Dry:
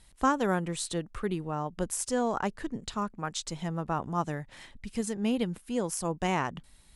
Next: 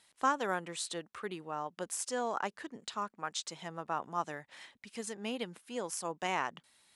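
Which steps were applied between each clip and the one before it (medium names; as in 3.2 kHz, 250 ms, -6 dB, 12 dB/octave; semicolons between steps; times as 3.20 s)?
frequency weighting A; trim -3 dB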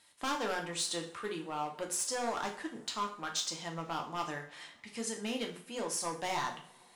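overload inside the chain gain 31.5 dB; two-slope reverb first 0.44 s, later 4 s, from -28 dB, DRR 1 dB; dynamic bell 5.4 kHz, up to +5 dB, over -53 dBFS, Q 1.4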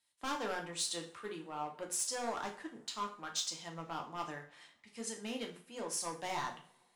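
three bands expanded up and down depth 40%; trim -4 dB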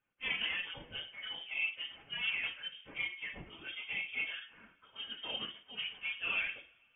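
phase randomisation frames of 50 ms; small resonant body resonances 730/1200 Hz, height 8 dB, ringing for 30 ms; frequency inversion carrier 3.4 kHz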